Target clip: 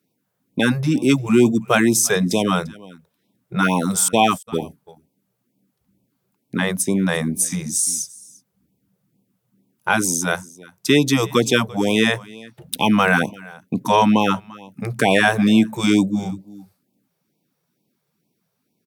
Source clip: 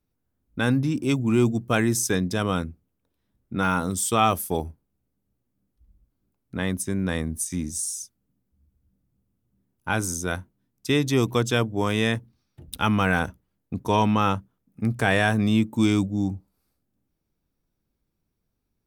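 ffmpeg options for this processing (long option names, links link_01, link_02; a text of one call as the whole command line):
ffmpeg -i in.wav -filter_complex "[0:a]highpass=frequency=150:width=0.5412,highpass=frequency=150:width=1.3066,asettb=1/sr,asplit=3[link_01][link_02][link_03];[link_01]atrim=end=4.084[link_04];[link_02]atrim=start=4.08:end=4.62,asetpts=PTS-STARTPTS,afade=type=in:duration=0.004:curve=qsin,afade=type=out:start_time=0.536:duration=0.004:curve=qsin,agate=range=-51dB:threshold=-23dB:ratio=16:detection=peak[link_05];[link_03]atrim=start=4.616[link_06];[link_04][link_05]acrossfade=duration=0.004:curve1=hsin:curve2=qsin[link_07];[link_07][link_06]acrossfade=duration=0.004:curve1=qsin:curve2=hsin,asplit=2[link_08][link_09];[link_09]acompressor=threshold=-29dB:ratio=6,volume=-2dB[link_10];[link_08][link_10]amix=inputs=2:normalize=0,aecho=1:1:344:0.0794,afftfilt=real='re*(1-between(b*sr/1024,240*pow(1600/240,0.5+0.5*sin(2*PI*2.2*pts/sr))/1.41,240*pow(1600/240,0.5+0.5*sin(2*PI*2.2*pts/sr))*1.41))':imag='im*(1-between(b*sr/1024,240*pow(1600/240,0.5+0.5*sin(2*PI*2.2*pts/sr))/1.41,240*pow(1600/240,0.5+0.5*sin(2*PI*2.2*pts/sr))*1.41))':win_size=1024:overlap=0.75,volume=5.5dB" out.wav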